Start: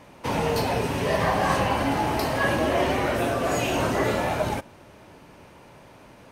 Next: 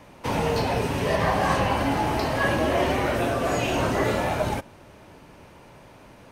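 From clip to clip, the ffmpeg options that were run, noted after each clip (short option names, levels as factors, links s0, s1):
-filter_complex "[0:a]lowshelf=f=63:g=5.5,acrossover=split=360|6500[s0][s1][s2];[s2]alimiter=level_in=4.73:limit=0.0631:level=0:latency=1:release=234,volume=0.211[s3];[s0][s1][s3]amix=inputs=3:normalize=0"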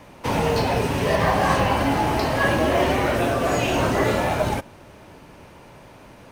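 -af "acrusher=bits=8:mode=log:mix=0:aa=0.000001,volume=1.41"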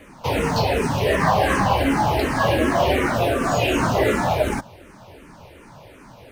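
-filter_complex "[0:a]asplit=2[s0][s1];[s1]afreqshift=-2.7[s2];[s0][s2]amix=inputs=2:normalize=1,volume=1.58"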